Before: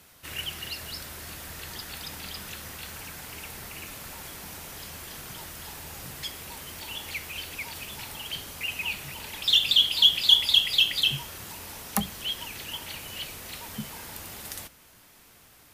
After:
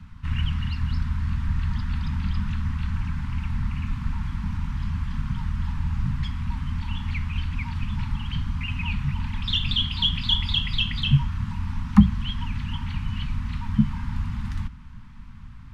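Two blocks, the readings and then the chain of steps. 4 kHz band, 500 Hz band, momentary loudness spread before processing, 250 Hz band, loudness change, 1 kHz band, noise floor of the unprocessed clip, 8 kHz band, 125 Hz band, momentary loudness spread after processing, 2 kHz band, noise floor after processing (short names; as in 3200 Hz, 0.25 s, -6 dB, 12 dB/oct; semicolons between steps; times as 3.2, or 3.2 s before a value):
-5.5 dB, under -20 dB, 20 LU, +16.5 dB, -1.5 dB, +3.0 dB, -55 dBFS, under -15 dB, +20.5 dB, 9 LU, -2.0 dB, -40 dBFS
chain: elliptic band-stop 240–970 Hz, stop band 50 dB; tilt -4 dB/oct; crackle 410/s -60 dBFS; tape spacing loss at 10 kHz 20 dB; gain +8.5 dB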